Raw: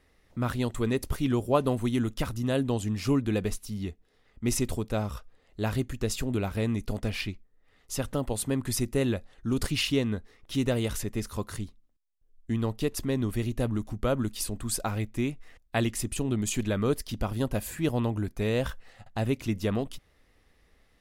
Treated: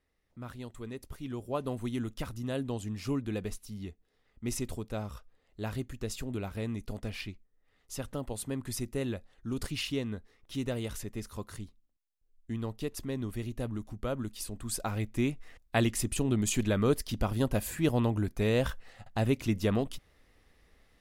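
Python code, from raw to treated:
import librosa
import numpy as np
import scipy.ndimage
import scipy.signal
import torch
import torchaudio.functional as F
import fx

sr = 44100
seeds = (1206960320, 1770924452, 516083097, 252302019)

y = fx.gain(x, sr, db=fx.line((1.12, -14.0), (1.83, -7.0), (14.45, -7.0), (15.26, 0.0)))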